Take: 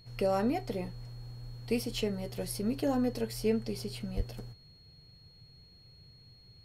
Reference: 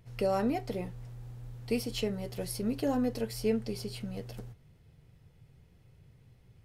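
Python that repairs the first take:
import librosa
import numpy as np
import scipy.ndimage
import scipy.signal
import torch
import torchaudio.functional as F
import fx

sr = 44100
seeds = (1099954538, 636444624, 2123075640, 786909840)

y = fx.notch(x, sr, hz=4300.0, q=30.0)
y = fx.fix_deplosive(y, sr, at_s=(4.16,))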